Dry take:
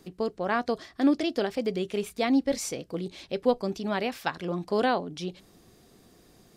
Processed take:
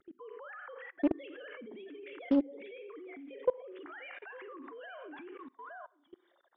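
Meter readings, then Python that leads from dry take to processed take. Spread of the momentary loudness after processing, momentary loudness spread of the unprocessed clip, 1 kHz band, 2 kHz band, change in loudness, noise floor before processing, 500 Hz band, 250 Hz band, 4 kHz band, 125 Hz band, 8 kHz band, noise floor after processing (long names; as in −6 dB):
18 LU, 10 LU, −16.5 dB, −11.0 dB, −10.0 dB, −59 dBFS, −10.5 dB, −8.0 dB, −19.5 dB, below −20 dB, below −40 dB, −72 dBFS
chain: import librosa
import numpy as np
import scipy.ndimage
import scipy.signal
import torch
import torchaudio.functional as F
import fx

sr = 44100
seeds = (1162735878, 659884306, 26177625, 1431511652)

p1 = fx.sine_speech(x, sr)
p2 = p1 + fx.echo_single(p1, sr, ms=867, db=-14.0, dry=0)
p3 = fx.env_phaser(p2, sr, low_hz=430.0, high_hz=2100.0, full_db=-18.5)
p4 = fx.vibrato(p3, sr, rate_hz=0.47, depth_cents=17.0)
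p5 = fx.low_shelf(p4, sr, hz=460.0, db=-11.5)
p6 = fx.env_lowpass_down(p5, sr, base_hz=1500.0, full_db=-28.5)
p7 = fx.peak_eq(p6, sr, hz=280.0, db=6.5, octaves=0.48)
p8 = fx.over_compress(p7, sr, threshold_db=-42.0, ratio=-1.0)
p9 = p7 + (p8 * 10.0 ** (1.0 / 20.0))
p10 = fx.rev_schroeder(p9, sr, rt60_s=0.48, comb_ms=31, drr_db=9.5)
p11 = fx.level_steps(p10, sr, step_db=24)
p12 = fx.doppler_dist(p11, sr, depth_ms=0.42)
y = p12 * 10.0 ** (1.0 / 20.0)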